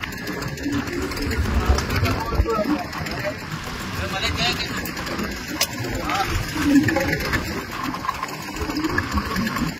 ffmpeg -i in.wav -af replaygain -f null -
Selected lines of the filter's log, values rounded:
track_gain = +4.7 dB
track_peak = 0.488